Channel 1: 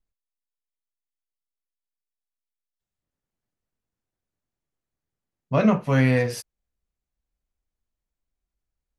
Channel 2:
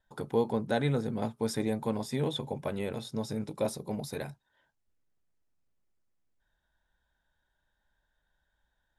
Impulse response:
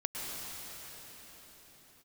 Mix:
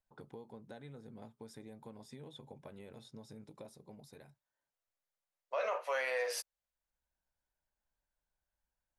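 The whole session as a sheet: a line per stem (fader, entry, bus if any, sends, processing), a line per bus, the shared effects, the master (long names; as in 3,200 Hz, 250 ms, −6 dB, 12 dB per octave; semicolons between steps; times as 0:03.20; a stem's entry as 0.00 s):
−3.5 dB, 0.00 s, no send, elliptic high-pass filter 520 Hz, stop band 70 dB
−12.5 dB, 0.00 s, no send, downward compressor 6 to 1, threshold −35 dBFS, peak gain reduction 12.5 dB; low-pass that shuts in the quiet parts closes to 1,100 Hz, open at −36.5 dBFS; automatic ducking −13 dB, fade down 1.95 s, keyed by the first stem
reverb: not used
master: brickwall limiter −26.5 dBFS, peak gain reduction 10 dB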